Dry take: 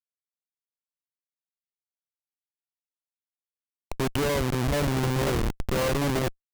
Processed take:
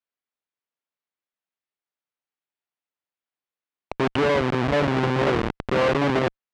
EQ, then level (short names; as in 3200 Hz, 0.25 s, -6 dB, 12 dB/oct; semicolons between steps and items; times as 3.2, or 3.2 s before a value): HPF 250 Hz 6 dB/oct; LPF 2900 Hz 12 dB/oct; +7.0 dB